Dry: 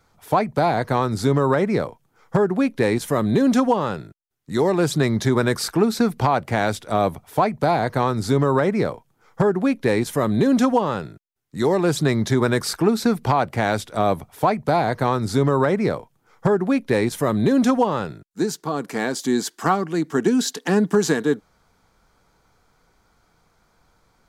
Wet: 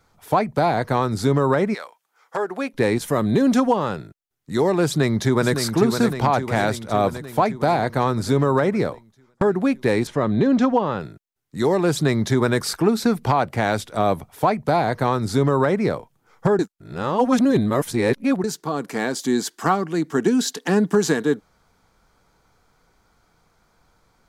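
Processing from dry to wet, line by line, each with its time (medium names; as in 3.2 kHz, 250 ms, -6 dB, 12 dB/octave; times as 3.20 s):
1.73–2.73 s: high-pass 1.4 kHz -> 380 Hz
4.85–5.57 s: echo throw 560 ms, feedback 65%, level -6.5 dB
8.65–9.41 s: fade out equal-power
10.07–11.01 s: distance through air 130 m
16.59–18.44 s: reverse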